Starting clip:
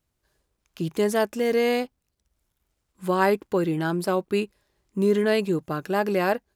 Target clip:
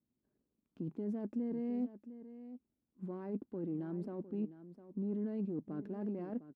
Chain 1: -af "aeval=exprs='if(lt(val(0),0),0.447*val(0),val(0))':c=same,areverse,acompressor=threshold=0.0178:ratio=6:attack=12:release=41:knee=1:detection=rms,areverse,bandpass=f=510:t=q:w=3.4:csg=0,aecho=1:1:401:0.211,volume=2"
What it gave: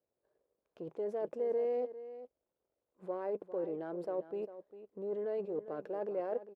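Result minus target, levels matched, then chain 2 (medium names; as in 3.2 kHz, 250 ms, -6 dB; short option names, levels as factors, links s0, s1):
250 Hz band -11.5 dB; echo 305 ms early
-af "aeval=exprs='if(lt(val(0),0),0.447*val(0),val(0))':c=same,areverse,acompressor=threshold=0.0178:ratio=6:attack=12:release=41:knee=1:detection=rms,areverse,bandpass=f=240:t=q:w=3.4:csg=0,aecho=1:1:706:0.211,volume=2"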